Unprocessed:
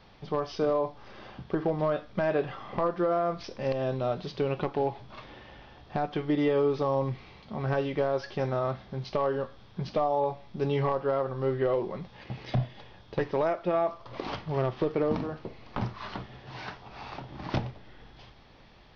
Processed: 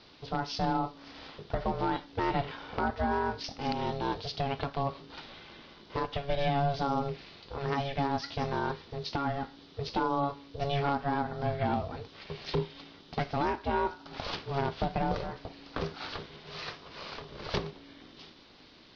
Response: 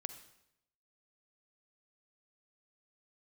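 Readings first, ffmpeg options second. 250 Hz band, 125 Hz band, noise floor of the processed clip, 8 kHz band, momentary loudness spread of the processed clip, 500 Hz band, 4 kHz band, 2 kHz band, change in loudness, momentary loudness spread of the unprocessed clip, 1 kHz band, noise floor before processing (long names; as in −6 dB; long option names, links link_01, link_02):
−2.5 dB, −2.5 dB, −56 dBFS, can't be measured, 14 LU, −7.0 dB, +5.5 dB, +1.5 dB, −3.5 dB, 15 LU, +1.5 dB, −54 dBFS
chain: -af "aeval=exprs='val(0)*sin(2*PI*280*n/s)':channel_layout=same,lowpass=frequency=4600:width_type=q:width=2,aemphasis=mode=production:type=cd" -ar 22050 -c:a libvorbis -b:a 48k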